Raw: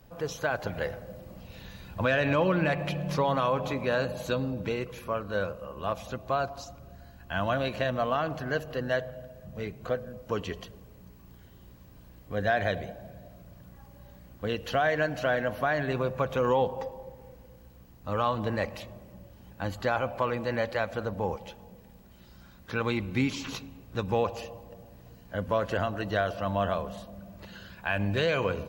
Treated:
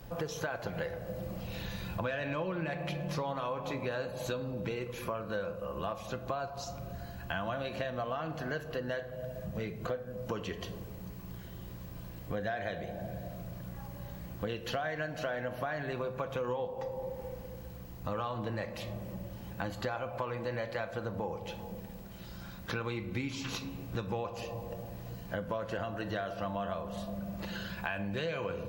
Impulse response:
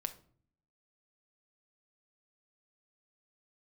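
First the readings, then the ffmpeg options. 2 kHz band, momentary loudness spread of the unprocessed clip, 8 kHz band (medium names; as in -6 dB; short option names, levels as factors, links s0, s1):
-7.5 dB, 19 LU, no reading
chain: -filter_complex "[1:a]atrim=start_sample=2205[s0];[0:a][s0]afir=irnorm=-1:irlink=0,acompressor=threshold=0.00794:ratio=5,volume=2.37"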